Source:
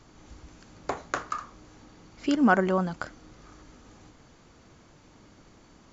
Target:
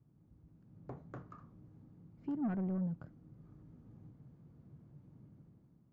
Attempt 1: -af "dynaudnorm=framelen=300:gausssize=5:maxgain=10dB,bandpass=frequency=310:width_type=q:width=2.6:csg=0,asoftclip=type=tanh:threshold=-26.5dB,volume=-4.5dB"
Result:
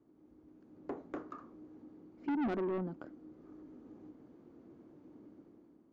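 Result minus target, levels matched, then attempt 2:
125 Hz band −7.5 dB
-af "dynaudnorm=framelen=300:gausssize=5:maxgain=10dB,bandpass=frequency=140:width_type=q:width=2.6:csg=0,asoftclip=type=tanh:threshold=-26.5dB,volume=-4.5dB"

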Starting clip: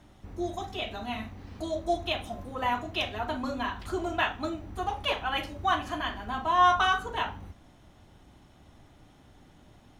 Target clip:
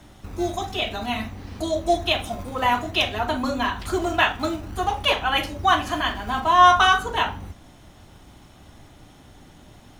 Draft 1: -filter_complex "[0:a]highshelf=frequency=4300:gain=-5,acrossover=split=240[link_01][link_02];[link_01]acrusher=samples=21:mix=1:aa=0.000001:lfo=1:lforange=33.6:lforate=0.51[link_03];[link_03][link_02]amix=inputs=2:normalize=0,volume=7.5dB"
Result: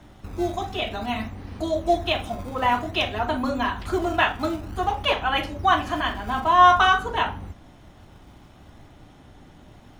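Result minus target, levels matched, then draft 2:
8,000 Hz band −6.0 dB
-filter_complex "[0:a]highshelf=frequency=4300:gain=5.5,acrossover=split=240[link_01][link_02];[link_01]acrusher=samples=21:mix=1:aa=0.000001:lfo=1:lforange=33.6:lforate=0.51[link_03];[link_03][link_02]amix=inputs=2:normalize=0,volume=7.5dB"

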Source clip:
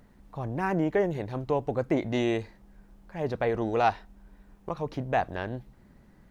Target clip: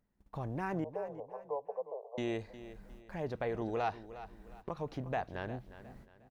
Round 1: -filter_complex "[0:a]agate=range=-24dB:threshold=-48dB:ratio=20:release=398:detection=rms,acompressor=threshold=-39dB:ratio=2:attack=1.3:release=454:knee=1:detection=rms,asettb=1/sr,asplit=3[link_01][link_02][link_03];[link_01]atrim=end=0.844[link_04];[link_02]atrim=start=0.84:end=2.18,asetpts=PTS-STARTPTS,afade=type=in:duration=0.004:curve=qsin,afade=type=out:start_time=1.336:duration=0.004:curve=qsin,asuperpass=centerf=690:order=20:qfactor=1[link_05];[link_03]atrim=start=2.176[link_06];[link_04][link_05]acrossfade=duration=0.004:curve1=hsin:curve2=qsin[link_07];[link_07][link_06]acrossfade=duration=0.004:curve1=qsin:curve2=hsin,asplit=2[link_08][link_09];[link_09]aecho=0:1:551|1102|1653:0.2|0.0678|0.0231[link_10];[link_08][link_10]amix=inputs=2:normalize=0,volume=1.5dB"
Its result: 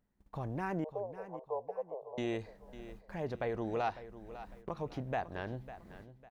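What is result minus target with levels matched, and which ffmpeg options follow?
echo 193 ms late
-filter_complex "[0:a]agate=range=-24dB:threshold=-48dB:ratio=20:release=398:detection=rms,acompressor=threshold=-39dB:ratio=2:attack=1.3:release=454:knee=1:detection=rms,asettb=1/sr,asplit=3[link_01][link_02][link_03];[link_01]atrim=end=0.844[link_04];[link_02]atrim=start=0.84:end=2.18,asetpts=PTS-STARTPTS,afade=type=in:duration=0.004:curve=qsin,afade=type=out:start_time=1.336:duration=0.004:curve=qsin,asuperpass=centerf=690:order=20:qfactor=1[link_05];[link_03]atrim=start=2.176[link_06];[link_04][link_05]acrossfade=duration=0.004:curve1=hsin:curve2=qsin[link_07];[link_07][link_06]acrossfade=duration=0.004:curve1=qsin:curve2=hsin,asplit=2[link_08][link_09];[link_09]aecho=0:1:358|716|1074:0.2|0.0678|0.0231[link_10];[link_08][link_10]amix=inputs=2:normalize=0,volume=1.5dB"

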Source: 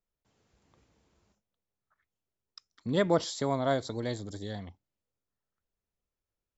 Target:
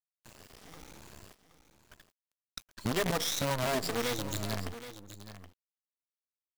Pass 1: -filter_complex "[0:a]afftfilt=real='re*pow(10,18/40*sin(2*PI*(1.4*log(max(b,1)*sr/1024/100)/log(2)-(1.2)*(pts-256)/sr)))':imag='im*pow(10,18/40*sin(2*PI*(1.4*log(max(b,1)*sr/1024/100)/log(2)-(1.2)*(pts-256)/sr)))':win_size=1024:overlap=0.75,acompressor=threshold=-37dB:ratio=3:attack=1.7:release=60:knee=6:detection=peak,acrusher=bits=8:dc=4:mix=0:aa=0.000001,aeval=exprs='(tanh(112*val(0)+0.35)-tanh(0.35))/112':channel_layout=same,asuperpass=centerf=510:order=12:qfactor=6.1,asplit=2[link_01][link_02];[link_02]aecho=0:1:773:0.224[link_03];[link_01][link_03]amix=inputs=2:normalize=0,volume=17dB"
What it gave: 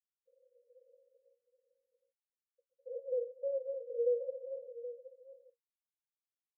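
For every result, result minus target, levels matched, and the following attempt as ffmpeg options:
downward compressor: peak gain reduction −6.5 dB; 500 Hz band +6.5 dB
-filter_complex "[0:a]afftfilt=real='re*pow(10,18/40*sin(2*PI*(1.4*log(max(b,1)*sr/1024/100)/log(2)-(1.2)*(pts-256)/sr)))':imag='im*pow(10,18/40*sin(2*PI*(1.4*log(max(b,1)*sr/1024/100)/log(2)-(1.2)*(pts-256)/sr)))':win_size=1024:overlap=0.75,acompressor=threshold=-47dB:ratio=3:attack=1.7:release=60:knee=6:detection=peak,acrusher=bits=8:dc=4:mix=0:aa=0.000001,aeval=exprs='(tanh(112*val(0)+0.35)-tanh(0.35))/112':channel_layout=same,asuperpass=centerf=510:order=12:qfactor=6.1,asplit=2[link_01][link_02];[link_02]aecho=0:1:773:0.224[link_03];[link_01][link_03]amix=inputs=2:normalize=0,volume=17dB"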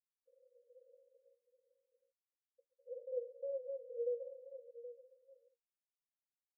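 500 Hz band +6.5 dB
-filter_complex "[0:a]afftfilt=real='re*pow(10,18/40*sin(2*PI*(1.4*log(max(b,1)*sr/1024/100)/log(2)-(1.2)*(pts-256)/sr)))':imag='im*pow(10,18/40*sin(2*PI*(1.4*log(max(b,1)*sr/1024/100)/log(2)-(1.2)*(pts-256)/sr)))':win_size=1024:overlap=0.75,acompressor=threshold=-47dB:ratio=3:attack=1.7:release=60:knee=6:detection=peak,acrusher=bits=8:dc=4:mix=0:aa=0.000001,aeval=exprs='(tanh(112*val(0)+0.35)-tanh(0.35))/112':channel_layout=same,asplit=2[link_01][link_02];[link_02]aecho=0:1:773:0.224[link_03];[link_01][link_03]amix=inputs=2:normalize=0,volume=17dB"

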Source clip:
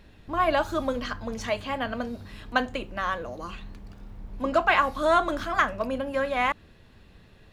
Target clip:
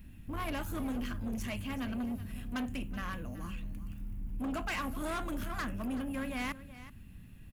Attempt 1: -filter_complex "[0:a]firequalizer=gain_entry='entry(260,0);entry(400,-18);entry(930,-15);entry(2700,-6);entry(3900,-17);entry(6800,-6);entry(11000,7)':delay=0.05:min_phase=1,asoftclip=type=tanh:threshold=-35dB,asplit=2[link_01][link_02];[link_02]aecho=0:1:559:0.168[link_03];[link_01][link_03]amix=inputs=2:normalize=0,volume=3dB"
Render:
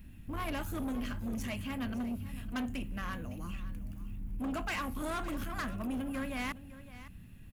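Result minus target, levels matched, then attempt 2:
echo 183 ms late
-filter_complex "[0:a]firequalizer=gain_entry='entry(260,0);entry(400,-18);entry(930,-15);entry(2700,-6);entry(3900,-17);entry(6800,-6);entry(11000,7)':delay=0.05:min_phase=1,asoftclip=type=tanh:threshold=-35dB,asplit=2[link_01][link_02];[link_02]aecho=0:1:376:0.168[link_03];[link_01][link_03]amix=inputs=2:normalize=0,volume=3dB"

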